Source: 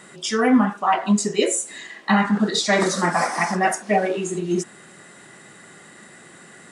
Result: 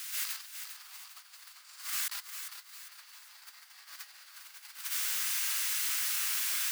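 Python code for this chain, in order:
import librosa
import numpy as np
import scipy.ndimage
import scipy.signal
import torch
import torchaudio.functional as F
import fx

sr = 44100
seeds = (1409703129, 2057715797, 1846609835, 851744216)

p1 = fx.spec_quant(x, sr, step_db=30)
p2 = fx.quant_dither(p1, sr, seeds[0], bits=6, dither='none')
p3 = p1 + (p2 * 10.0 ** (-11.0 / 20.0))
p4 = fx.schmitt(p3, sr, flips_db=-17.0)
p5 = fx.level_steps(p4, sr, step_db=20)
p6 = fx.peak_eq(p5, sr, hz=4600.0, db=11.5, octaves=0.45)
p7 = fx.dmg_noise_colour(p6, sr, seeds[1], colour='white', level_db=-51.0)
p8 = fx.rev_plate(p7, sr, seeds[2], rt60_s=0.79, hf_ratio=0.65, predelay_ms=115, drr_db=-9.5)
p9 = fx.over_compress(p8, sr, threshold_db=-40.0, ratio=-0.5)
p10 = scipy.signal.sosfilt(scipy.signal.butter(4, 1300.0, 'highpass', fs=sr, output='sos'), p9)
p11 = p10 + fx.echo_feedback(p10, sr, ms=402, feedback_pct=43, wet_db=-8.5, dry=0)
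y = p11 * 10.0 ** (2.5 / 20.0)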